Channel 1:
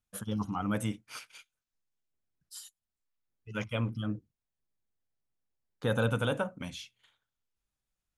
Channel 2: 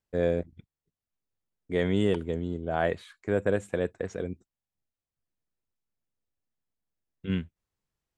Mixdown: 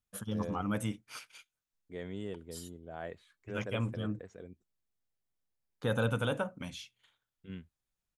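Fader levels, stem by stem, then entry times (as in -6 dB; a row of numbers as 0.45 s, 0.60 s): -2.0 dB, -15.5 dB; 0.00 s, 0.20 s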